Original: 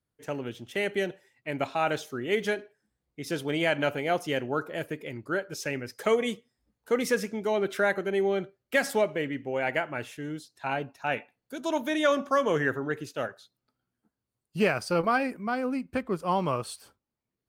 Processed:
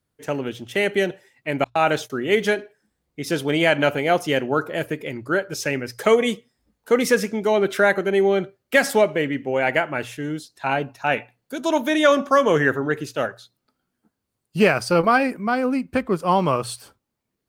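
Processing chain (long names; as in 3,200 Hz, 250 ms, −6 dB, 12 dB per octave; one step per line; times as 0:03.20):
0:01.64–0:02.10: noise gate −37 dBFS, range −44 dB
mains-hum notches 60/120 Hz
level +8 dB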